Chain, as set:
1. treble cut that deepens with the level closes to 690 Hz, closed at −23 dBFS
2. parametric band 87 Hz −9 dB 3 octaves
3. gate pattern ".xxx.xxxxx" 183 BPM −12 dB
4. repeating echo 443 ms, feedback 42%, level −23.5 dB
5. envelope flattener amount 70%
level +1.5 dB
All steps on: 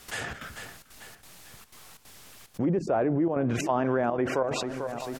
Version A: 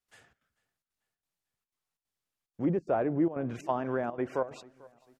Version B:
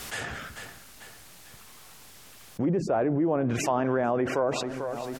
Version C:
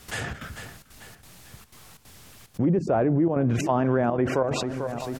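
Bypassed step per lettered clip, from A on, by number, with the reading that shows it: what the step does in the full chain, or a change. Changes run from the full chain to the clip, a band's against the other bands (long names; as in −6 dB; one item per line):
5, change in momentary loudness spread −13 LU
3, 8 kHz band +1.5 dB
2, 125 Hz band +5.5 dB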